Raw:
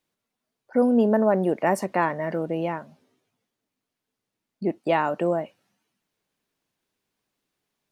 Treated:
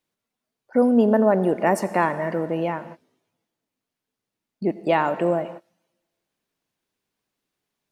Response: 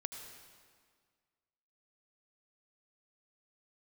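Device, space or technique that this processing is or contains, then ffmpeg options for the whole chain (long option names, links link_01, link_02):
keyed gated reverb: -filter_complex "[0:a]asplit=3[link_01][link_02][link_03];[1:a]atrim=start_sample=2205[link_04];[link_02][link_04]afir=irnorm=-1:irlink=0[link_05];[link_03]apad=whole_len=349061[link_06];[link_05][link_06]sidechaingate=range=-29dB:threshold=-46dB:ratio=16:detection=peak,volume=-3dB[link_07];[link_01][link_07]amix=inputs=2:normalize=0,volume=-1.5dB"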